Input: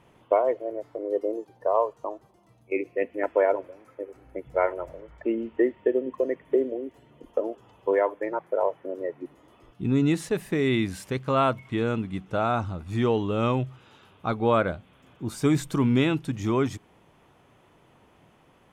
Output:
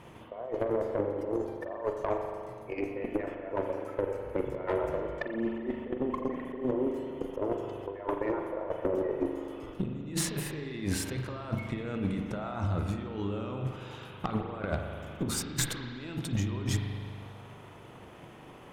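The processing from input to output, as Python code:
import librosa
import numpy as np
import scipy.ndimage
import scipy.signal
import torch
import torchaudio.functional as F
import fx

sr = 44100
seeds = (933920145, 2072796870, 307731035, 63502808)

y = fx.over_compress(x, sr, threshold_db=-35.0, ratio=-1.0)
y = fx.transient(y, sr, attack_db=6, sustain_db=0)
y = fx.tube_stage(y, sr, drive_db=21.0, bias=0.45)
y = fx.rev_spring(y, sr, rt60_s=2.1, pass_ms=(40,), chirp_ms=20, drr_db=3.0)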